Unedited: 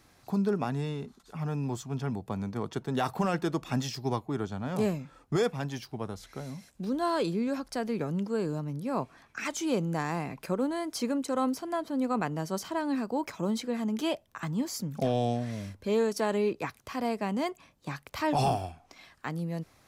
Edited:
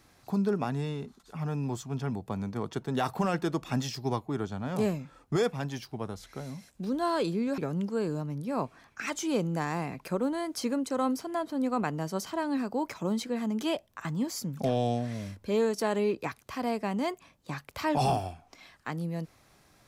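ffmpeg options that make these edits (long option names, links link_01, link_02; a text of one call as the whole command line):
ffmpeg -i in.wav -filter_complex "[0:a]asplit=2[link_01][link_02];[link_01]atrim=end=7.582[link_03];[link_02]atrim=start=7.958[link_04];[link_03][link_04]acrossfade=duration=0.004:curve1=hsin:curve2=hsin" out.wav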